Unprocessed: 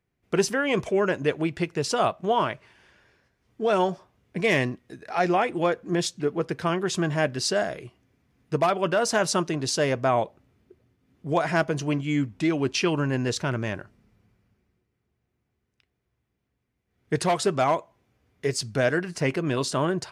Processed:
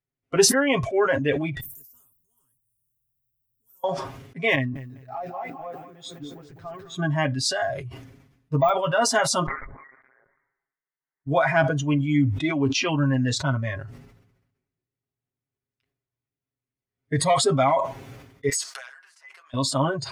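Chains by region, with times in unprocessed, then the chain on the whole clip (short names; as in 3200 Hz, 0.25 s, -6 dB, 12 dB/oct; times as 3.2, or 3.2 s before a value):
1.6–3.84 inverse Chebyshev band-stop 330–4400 Hz, stop band 60 dB + comb 3.1 ms, depth 44% + spectral compressor 10:1
4.55–6.96 high shelf 2800 Hz -8 dB + compressor 12:1, threshold -30 dBFS + lo-fi delay 0.204 s, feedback 55%, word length 10-bit, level -6 dB
7.63–8.86 low shelf 73 Hz +9 dB + de-esser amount 90%
9.46–11.27 steep high-pass 1800 Hz 96 dB/oct + compressor 12:1, threshold -41 dBFS + inverted band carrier 3900 Hz
18.49–19.54 inverse Chebyshev high-pass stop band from 160 Hz, stop band 80 dB + bell 2500 Hz -4 dB 0.81 oct + compressor 8:1, threshold -40 dBFS
whole clip: spectral noise reduction 16 dB; comb 7.4 ms, depth 81%; sustainer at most 59 dB/s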